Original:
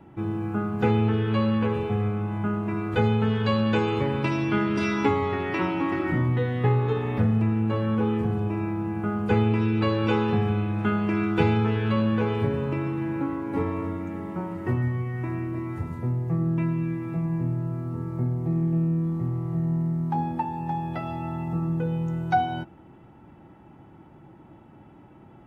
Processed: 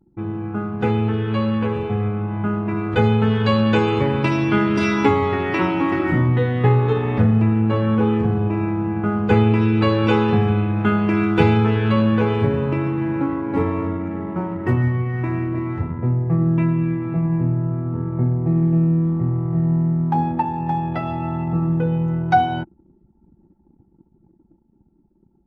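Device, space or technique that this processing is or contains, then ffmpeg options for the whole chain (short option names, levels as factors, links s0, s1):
voice memo with heavy noise removal: -filter_complex "[0:a]asettb=1/sr,asplit=3[s0][s1][s2];[s0]atrim=end=14.654[s3];[s1]atrim=start=14.65:end=15.91,asetpts=PTS-STARTPTS,afade=t=in:d=0.004:c=qsin,afade=t=out:st=1.256:d=0.004:c=qsin,highshelf=f=2500:g=4[s4];[s2]atrim=start=15.906[s5];[s3][s4]acrossfade=d=0.004:c1=hsin:c2=qsin[s6];[s6][s5]acrossfade=d=0.004:c1=qsin:c2=hsin,anlmdn=0.631,dynaudnorm=f=540:g=9:m=1.78,volume=1.26"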